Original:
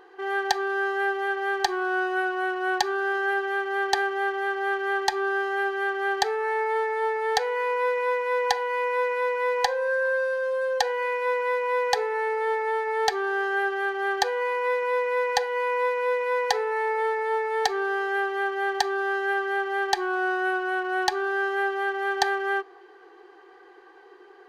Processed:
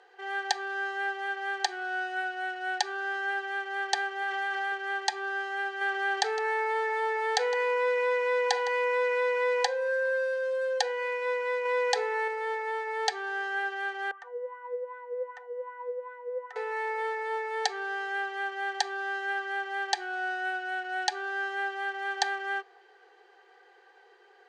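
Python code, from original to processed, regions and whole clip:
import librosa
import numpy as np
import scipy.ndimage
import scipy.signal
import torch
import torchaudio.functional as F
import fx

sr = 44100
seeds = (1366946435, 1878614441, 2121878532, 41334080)

y = fx.chain(x, sr, fx.peak_eq(hz=420.0, db=-6.0, octaves=0.65),
    fx.env_flatten(amount_pct=100), at=(4.22, 4.72))
y = fx.chain(y, sr, fx.echo_single(ms=160, db=-18.5),
    fx.env_flatten(amount_pct=50), at=(5.81, 9.67))
y = fx.chain(y, sr, fx.notch(hz=1100.0, q=26.0),
    fx.env_flatten(amount_pct=50), at=(11.65, 12.28))
y = fx.chain(y, sr, fx.notch_comb(f0_hz=810.0),
    fx.wah_lfo(hz=2.6, low_hz=430.0, high_hz=1300.0, q=5.4),
    fx.peak_eq(hz=4400.0, db=-14.0, octaves=0.47), at=(14.11, 16.56))
y = scipy.signal.sosfilt(scipy.signal.ellip(3, 1.0, 40, [510.0, 8400.0], 'bandpass', fs=sr, output='sos'), y)
y = fx.peak_eq(y, sr, hz=1100.0, db=-4.5, octaves=2.4)
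y = fx.notch(y, sr, hz=1100.0, q=5.8)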